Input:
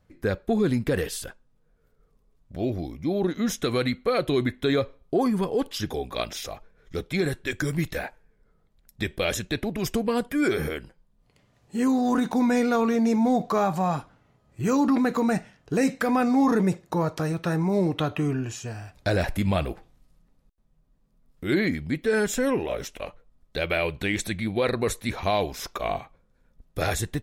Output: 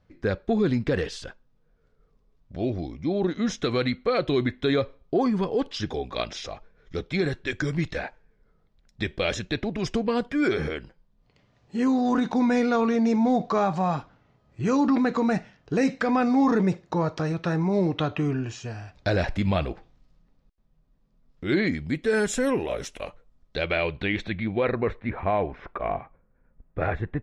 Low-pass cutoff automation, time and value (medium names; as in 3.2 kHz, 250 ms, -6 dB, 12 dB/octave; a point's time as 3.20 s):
low-pass 24 dB/octave
21.47 s 5.9 kHz
22.37 s 11 kHz
22.97 s 11 kHz
23.66 s 5.3 kHz
25.10 s 2.1 kHz